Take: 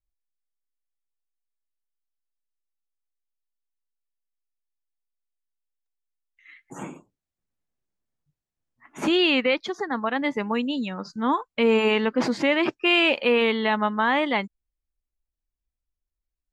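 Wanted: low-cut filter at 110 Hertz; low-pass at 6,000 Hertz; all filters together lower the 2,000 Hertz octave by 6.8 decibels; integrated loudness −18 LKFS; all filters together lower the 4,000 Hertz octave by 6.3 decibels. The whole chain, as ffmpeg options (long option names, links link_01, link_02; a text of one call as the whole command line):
ffmpeg -i in.wav -af "highpass=110,lowpass=6000,equalizer=frequency=2000:width_type=o:gain=-7,equalizer=frequency=4000:width_type=o:gain=-5,volume=6.5dB" out.wav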